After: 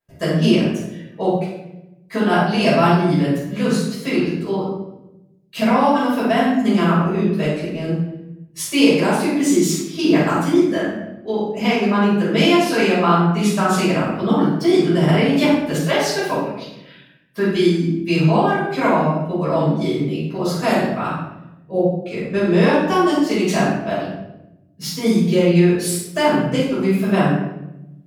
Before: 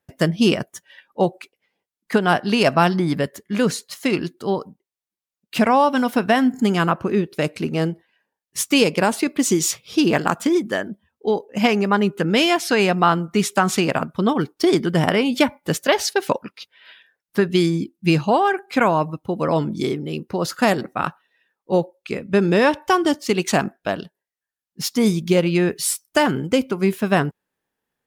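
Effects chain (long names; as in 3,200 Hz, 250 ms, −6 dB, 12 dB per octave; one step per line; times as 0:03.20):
0:07.44–0:07.84: downward compressor, threshold −23 dBFS, peak gain reduction 7.5 dB
0:21.71–0:21.94: gain on a spectral selection 780–9,600 Hz −14 dB
convolution reverb RT60 0.90 s, pre-delay 5 ms, DRR −10.5 dB
level −13 dB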